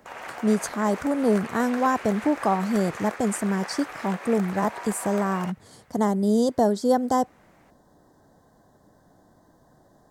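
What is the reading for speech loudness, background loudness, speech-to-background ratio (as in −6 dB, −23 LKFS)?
−24.5 LKFS, −37.0 LKFS, 12.5 dB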